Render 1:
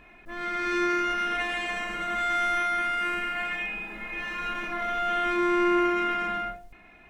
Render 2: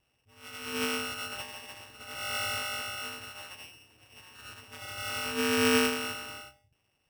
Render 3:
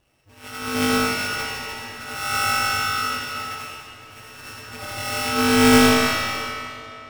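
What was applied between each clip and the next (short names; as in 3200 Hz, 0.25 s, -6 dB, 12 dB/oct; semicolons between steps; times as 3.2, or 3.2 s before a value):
sample sorter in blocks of 16 samples; ring modulator 100 Hz; upward expander 2.5:1, over -39 dBFS; gain +2.5 dB
half-waves squared off; digital reverb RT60 2.8 s, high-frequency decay 0.85×, pre-delay 15 ms, DRR -1.5 dB; gain +4 dB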